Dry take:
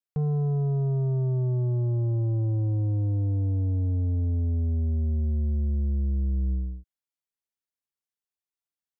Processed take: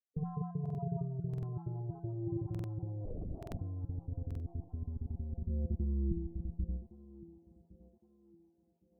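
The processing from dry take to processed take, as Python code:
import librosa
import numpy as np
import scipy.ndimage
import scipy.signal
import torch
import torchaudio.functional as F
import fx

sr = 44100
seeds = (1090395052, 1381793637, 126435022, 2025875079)

y = fx.spec_dropout(x, sr, seeds[0], share_pct=28)
y = fx.highpass(y, sr, hz=80.0, slope=12, at=(5.49, 6.12))
y = fx.over_compress(y, sr, threshold_db=-29.0, ratio=-0.5)
y = fx.spec_topn(y, sr, count=16)
y = fx.comb_fb(y, sr, f0_hz=170.0, decay_s=0.62, harmonics='all', damping=0.0, mix_pct=90)
y = fx.vibrato(y, sr, rate_hz=0.43, depth_cents=27.0)
y = fx.echo_thinned(y, sr, ms=1113, feedback_pct=59, hz=410.0, wet_db=-9)
y = fx.lpc_vocoder(y, sr, seeds[1], excitation='whisper', order=10, at=(3.05, 3.59))
y = fx.buffer_glitch(y, sr, at_s=(0.61, 1.29, 2.5, 3.38, 4.26), block=2048, repeats=2)
y = F.gain(torch.from_numpy(y), 11.0).numpy()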